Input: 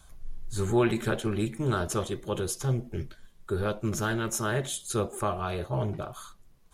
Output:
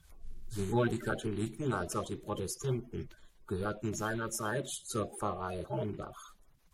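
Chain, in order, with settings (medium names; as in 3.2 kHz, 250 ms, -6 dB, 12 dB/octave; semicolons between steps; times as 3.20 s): coarse spectral quantiser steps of 30 dB; Chebyshev shaper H 7 -37 dB, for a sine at -12 dBFS; trim -5 dB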